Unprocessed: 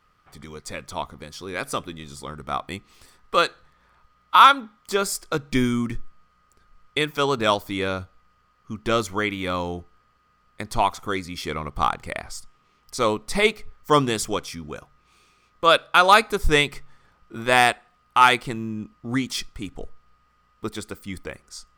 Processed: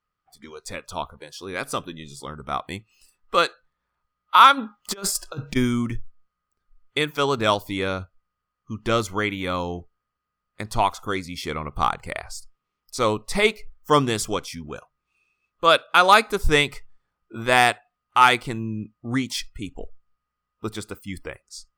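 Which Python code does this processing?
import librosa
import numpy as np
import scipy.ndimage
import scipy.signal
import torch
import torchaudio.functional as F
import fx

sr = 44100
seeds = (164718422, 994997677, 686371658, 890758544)

y = fx.over_compress(x, sr, threshold_db=-29.0, ratio=-0.5, at=(4.57, 5.55), fade=0.02)
y = fx.noise_reduce_blind(y, sr, reduce_db=19)
y = fx.dynamic_eq(y, sr, hz=110.0, q=6.7, threshold_db=-50.0, ratio=4.0, max_db=5)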